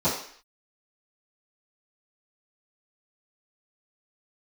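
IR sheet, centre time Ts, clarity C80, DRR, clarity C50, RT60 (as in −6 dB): 36 ms, 9.0 dB, −16.0 dB, 5.0 dB, 0.55 s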